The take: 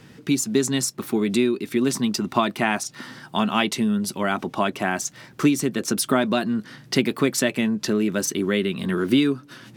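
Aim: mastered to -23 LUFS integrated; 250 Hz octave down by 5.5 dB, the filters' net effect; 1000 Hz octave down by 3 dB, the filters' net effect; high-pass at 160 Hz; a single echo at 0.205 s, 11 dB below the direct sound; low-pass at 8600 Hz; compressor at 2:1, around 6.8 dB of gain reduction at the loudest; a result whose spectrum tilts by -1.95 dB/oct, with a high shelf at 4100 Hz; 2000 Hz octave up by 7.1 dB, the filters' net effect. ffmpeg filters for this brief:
-af "highpass=160,lowpass=8.6k,equalizer=f=250:t=o:g=-5.5,equalizer=f=1k:t=o:g=-7.5,equalizer=f=2k:t=o:g=9,highshelf=f=4.1k:g=9,acompressor=threshold=-25dB:ratio=2,aecho=1:1:205:0.282,volume=3dB"

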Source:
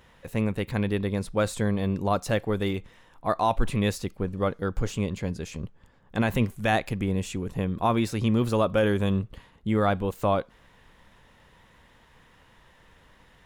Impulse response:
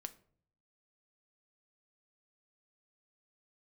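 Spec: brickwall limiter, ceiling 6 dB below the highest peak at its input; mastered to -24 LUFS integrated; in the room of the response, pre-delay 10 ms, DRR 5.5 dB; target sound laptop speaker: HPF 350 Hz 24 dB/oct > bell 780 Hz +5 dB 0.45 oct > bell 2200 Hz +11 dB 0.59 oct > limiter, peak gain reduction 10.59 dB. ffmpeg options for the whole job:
-filter_complex "[0:a]alimiter=limit=-18dB:level=0:latency=1,asplit=2[a][b];[1:a]atrim=start_sample=2205,adelay=10[c];[b][c]afir=irnorm=-1:irlink=0,volume=-1.5dB[d];[a][d]amix=inputs=2:normalize=0,highpass=f=350:w=0.5412,highpass=f=350:w=1.3066,equalizer=f=780:t=o:w=0.45:g=5,equalizer=f=2.2k:t=o:w=0.59:g=11,volume=10.5dB,alimiter=limit=-11.5dB:level=0:latency=1"

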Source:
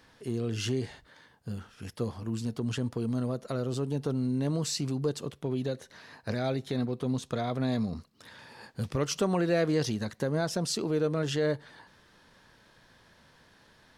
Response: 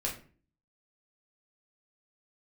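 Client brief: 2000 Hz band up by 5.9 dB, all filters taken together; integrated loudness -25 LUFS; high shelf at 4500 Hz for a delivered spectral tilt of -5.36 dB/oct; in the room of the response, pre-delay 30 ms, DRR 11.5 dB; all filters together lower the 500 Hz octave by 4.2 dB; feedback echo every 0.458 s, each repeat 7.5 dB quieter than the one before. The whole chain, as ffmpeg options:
-filter_complex "[0:a]equalizer=f=500:t=o:g=-5.5,equalizer=f=2k:t=o:g=9,highshelf=f=4.5k:g=-5.5,aecho=1:1:458|916|1374|1832|2290:0.422|0.177|0.0744|0.0312|0.0131,asplit=2[a][b];[1:a]atrim=start_sample=2205,adelay=30[c];[b][c]afir=irnorm=-1:irlink=0,volume=-15.5dB[d];[a][d]amix=inputs=2:normalize=0,volume=7dB"

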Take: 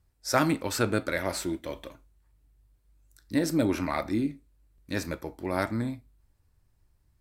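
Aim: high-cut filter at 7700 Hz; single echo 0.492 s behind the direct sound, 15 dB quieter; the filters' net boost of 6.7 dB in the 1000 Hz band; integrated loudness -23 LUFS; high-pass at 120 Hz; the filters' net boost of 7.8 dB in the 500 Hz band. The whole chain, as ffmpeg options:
-af "highpass=120,lowpass=7.7k,equalizer=f=500:t=o:g=8,equalizer=f=1k:t=o:g=6.5,aecho=1:1:492:0.178,volume=2dB"

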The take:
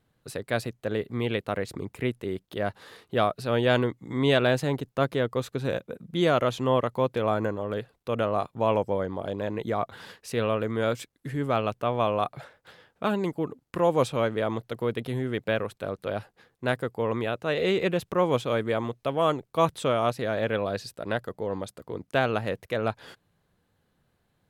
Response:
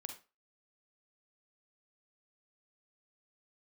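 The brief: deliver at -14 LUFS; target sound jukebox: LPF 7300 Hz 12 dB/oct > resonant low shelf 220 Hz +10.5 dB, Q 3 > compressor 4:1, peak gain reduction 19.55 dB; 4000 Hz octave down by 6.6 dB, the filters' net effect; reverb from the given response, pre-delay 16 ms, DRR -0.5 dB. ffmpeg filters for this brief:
-filter_complex "[0:a]equalizer=f=4k:t=o:g=-8.5,asplit=2[a][b];[1:a]atrim=start_sample=2205,adelay=16[c];[b][c]afir=irnorm=-1:irlink=0,volume=4dB[d];[a][d]amix=inputs=2:normalize=0,lowpass=7.3k,lowshelf=f=220:t=q:w=3:g=10.5,acompressor=threshold=-31dB:ratio=4,volume=19dB"

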